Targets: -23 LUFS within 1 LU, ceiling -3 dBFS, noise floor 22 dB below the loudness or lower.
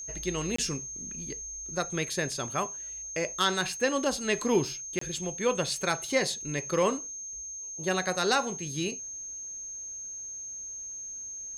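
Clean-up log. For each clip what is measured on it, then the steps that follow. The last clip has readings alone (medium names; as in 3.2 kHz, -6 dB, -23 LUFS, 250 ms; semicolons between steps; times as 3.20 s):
dropouts 2; longest dropout 24 ms; steady tone 6.4 kHz; tone level -37 dBFS; loudness -30.5 LUFS; peak level -12.0 dBFS; loudness target -23.0 LUFS
-> interpolate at 0.56/4.99 s, 24 ms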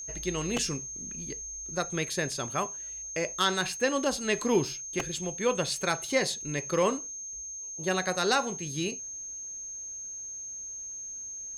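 dropouts 0; steady tone 6.4 kHz; tone level -37 dBFS
-> band-stop 6.4 kHz, Q 30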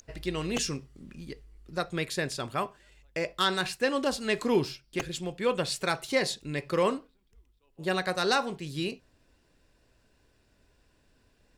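steady tone not found; loudness -30.5 LUFS; peak level -12.0 dBFS; loudness target -23.0 LUFS
-> trim +7.5 dB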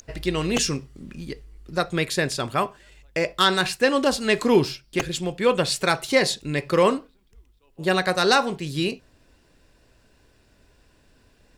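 loudness -23.0 LUFS; peak level -4.5 dBFS; noise floor -60 dBFS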